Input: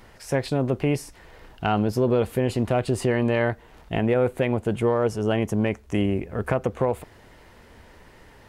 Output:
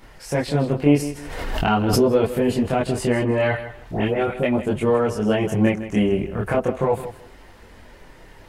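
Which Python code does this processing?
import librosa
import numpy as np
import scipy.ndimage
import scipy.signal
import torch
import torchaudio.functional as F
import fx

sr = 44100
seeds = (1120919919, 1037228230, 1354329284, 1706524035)

y = fx.dispersion(x, sr, late='highs', ms=105.0, hz=1800.0, at=(3.22, 4.43))
y = fx.chorus_voices(y, sr, voices=6, hz=0.37, base_ms=24, depth_ms=4.0, mix_pct=55)
y = fx.echo_feedback(y, sr, ms=160, feedback_pct=20, wet_db=-13)
y = fx.pre_swell(y, sr, db_per_s=35.0, at=(0.92, 2.07))
y = y * librosa.db_to_amplitude(6.0)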